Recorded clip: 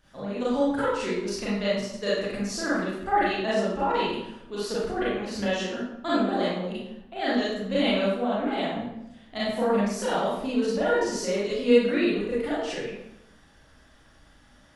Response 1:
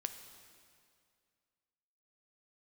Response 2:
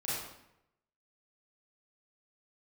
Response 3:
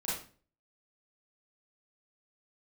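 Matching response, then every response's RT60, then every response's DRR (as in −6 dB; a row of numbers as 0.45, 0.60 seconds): 2; 2.2, 0.85, 0.40 seconds; 7.5, −10.0, −9.0 decibels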